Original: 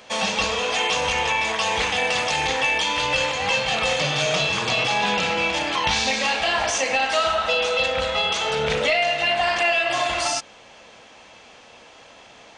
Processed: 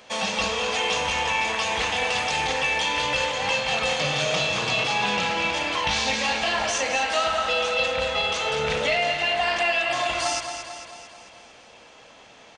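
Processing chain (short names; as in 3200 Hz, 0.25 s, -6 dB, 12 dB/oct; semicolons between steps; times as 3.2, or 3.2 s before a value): feedback echo 0.223 s, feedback 56%, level -8.5 dB; gain -3 dB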